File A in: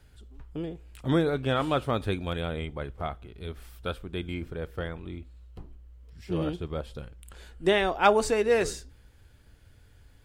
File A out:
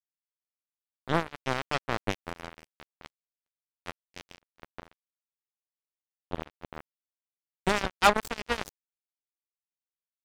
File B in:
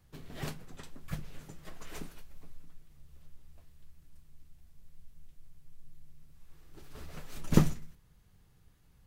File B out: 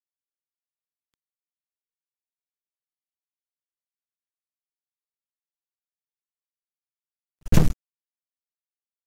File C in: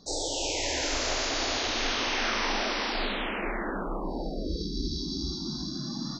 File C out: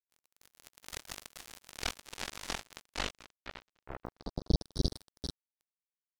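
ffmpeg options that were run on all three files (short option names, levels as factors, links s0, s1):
-af "asubboost=boost=3:cutoff=160,acrusher=bits=2:mix=0:aa=0.5"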